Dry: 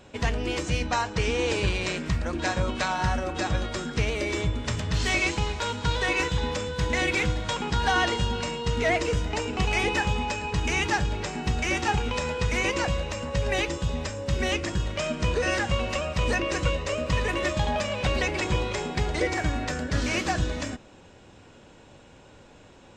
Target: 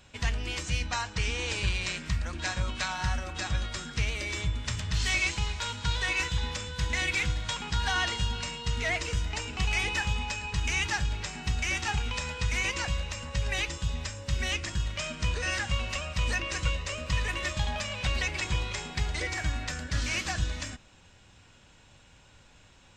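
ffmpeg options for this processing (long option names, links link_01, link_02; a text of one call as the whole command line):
ffmpeg -i in.wav -af "equalizer=frequency=400:width_type=o:width=2.6:gain=-14" out.wav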